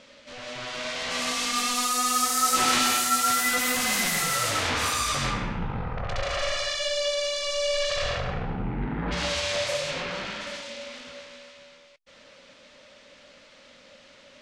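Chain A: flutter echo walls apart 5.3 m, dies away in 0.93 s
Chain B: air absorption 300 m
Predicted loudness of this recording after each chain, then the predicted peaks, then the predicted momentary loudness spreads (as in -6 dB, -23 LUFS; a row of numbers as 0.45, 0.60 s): -21.0, -29.5 LUFS; -6.0, -15.0 dBFS; 14, 13 LU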